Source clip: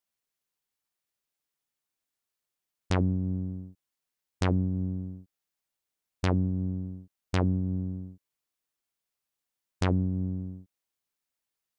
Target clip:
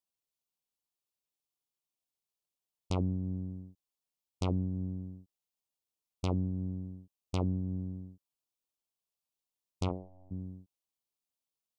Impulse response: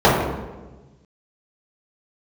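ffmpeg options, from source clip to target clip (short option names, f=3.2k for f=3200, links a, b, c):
-filter_complex "[0:a]asplit=3[a][b][c];[a]afade=t=out:st=9.88:d=0.02[d];[b]aeval=exprs='0.188*(cos(1*acos(clip(val(0)/0.188,-1,1)))-cos(1*PI/2))+0.075*(cos(3*acos(clip(val(0)/0.188,-1,1)))-cos(3*PI/2))+0.00531*(cos(4*acos(clip(val(0)/0.188,-1,1)))-cos(4*PI/2))+0.00596*(cos(5*acos(clip(val(0)/0.188,-1,1)))-cos(5*PI/2))+0.00944*(cos(6*acos(clip(val(0)/0.188,-1,1)))-cos(6*PI/2))':c=same,afade=t=in:st=9.88:d=0.02,afade=t=out:st=10.3:d=0.02[e];[c]afade=t=in:st=10.3:d=0.02[f];[d][e][f]amix=inputs=3:normalize=0,asuperstop=centerf=1700:order=4:qfactor=1.3,volume=-5.5dB"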